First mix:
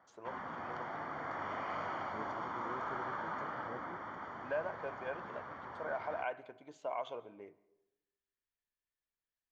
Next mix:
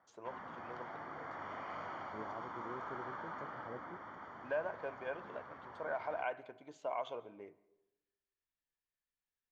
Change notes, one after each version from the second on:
background -5.0 dB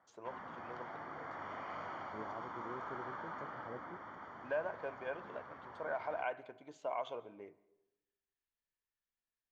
none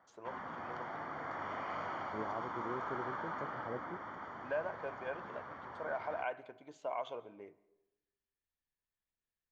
second voice +5.5 dB; background +4.0 dB

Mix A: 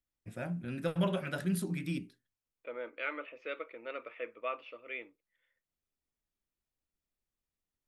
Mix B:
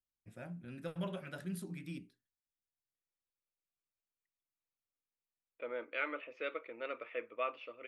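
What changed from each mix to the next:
first voice -9.0 dB; second voice: entry +2.95 s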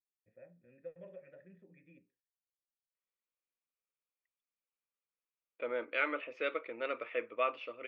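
first voice: add vocal tract filter e; second voice +4.5 dB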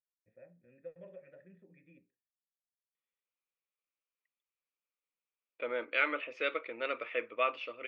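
second voice: add high shelf 2100 Hz +7.5 dB

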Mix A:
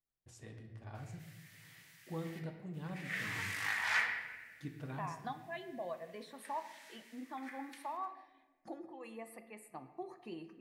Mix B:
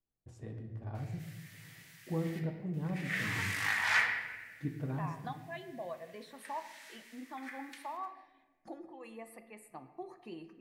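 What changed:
first voice: add tilt shelf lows +8 dB, about 1300 Hz; background +4.0 dB

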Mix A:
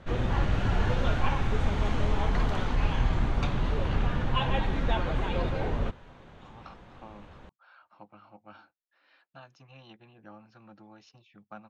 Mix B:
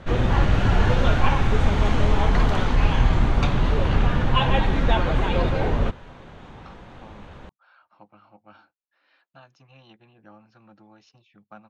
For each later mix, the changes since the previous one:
background +7.5 dB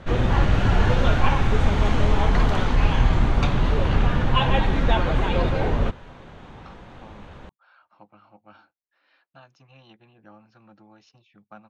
first voice -7.5 dB

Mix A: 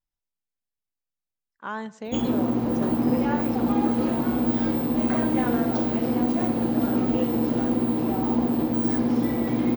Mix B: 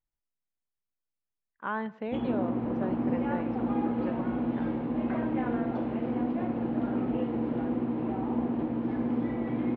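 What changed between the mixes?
background -6.5 dB; master: add LPF 2800 Hz 24 dB/oct

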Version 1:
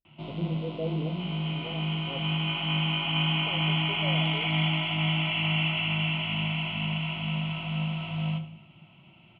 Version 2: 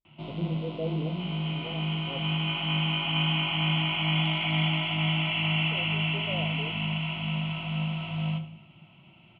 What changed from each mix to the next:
second voice: entry +2.25 s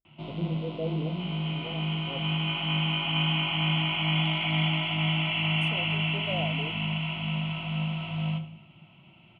second voice: remove band-pass 430 Hz, Q 1.5

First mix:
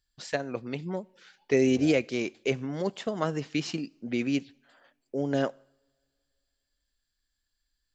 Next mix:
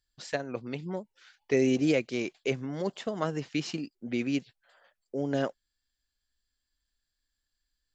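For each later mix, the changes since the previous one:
first voice: send off; second voice -12.0 dB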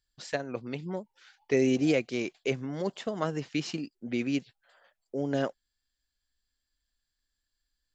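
second voice: add band shelf 980 Hz +11.5 dB 1.2 oct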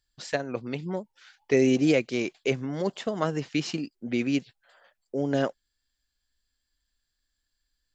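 first voice +3.5 dB; reverb: off

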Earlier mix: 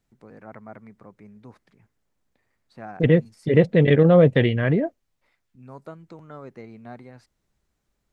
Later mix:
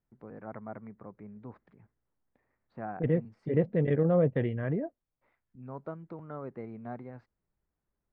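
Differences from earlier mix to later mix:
second voice -10.5 dB; master: add LPF 1500 Hz 12 dB/oct

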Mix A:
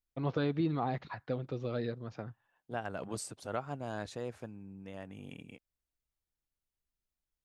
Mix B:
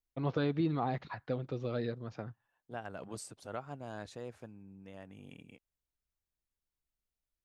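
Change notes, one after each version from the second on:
second voice -4.5 dB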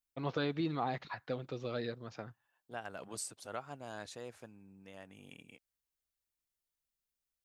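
master: add tilt +2 dB/oct

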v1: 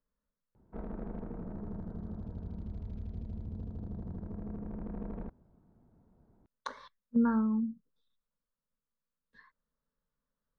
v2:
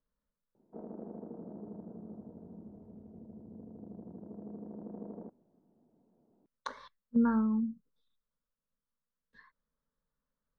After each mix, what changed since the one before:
background: add Butterworth band-pass 410 Hz, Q 0.72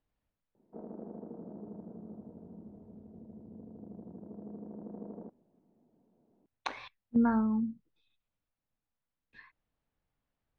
speech: remove fixed phaser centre 500 Hz, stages 8

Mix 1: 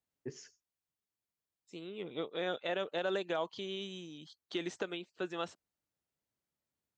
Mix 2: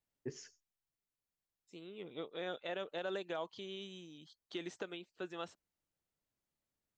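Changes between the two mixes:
second voice -5.5 dB; master: remove HPF 59 Hz

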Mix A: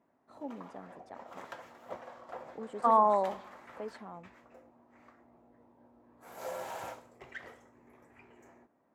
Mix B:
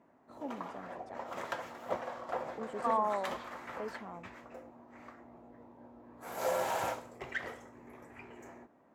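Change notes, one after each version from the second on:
second voice -7.0 dB; background +7.5 dB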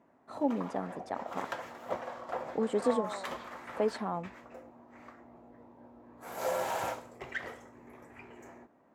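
first voice +12.0 dB; second voice -7.5 dB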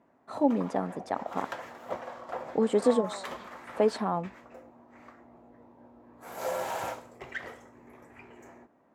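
first voice +5.5 dB

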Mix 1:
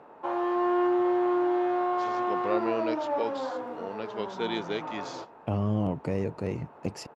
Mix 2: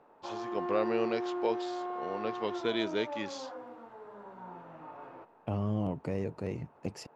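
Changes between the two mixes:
first voice: entry -1.75 s; second voice -4.5 dB; background -10.0 dB

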